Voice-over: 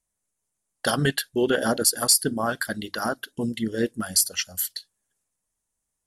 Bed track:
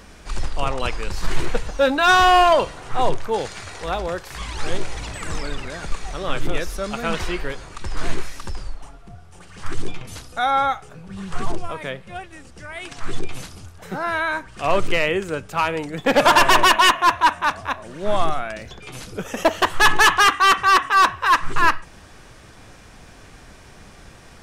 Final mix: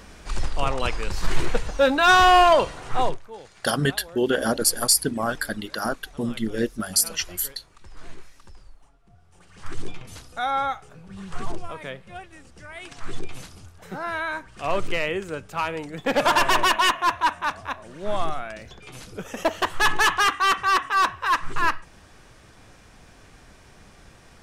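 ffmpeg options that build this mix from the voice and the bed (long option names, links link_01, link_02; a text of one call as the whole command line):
ffmpeg -i stem1.wav -i stem2.wav -filter_complex "[0:a]adelay=2800,volume=0dB[link_01];[1:a]volume=11dB,afade=type=out:start_time=2.98:duration=0.22:silence=0.149624,afade=type=in:start_time=9:duration=0.81:silence=0.251189[link_02];[link_01][link_02]amix=inputs=2:normalize=0" out.wav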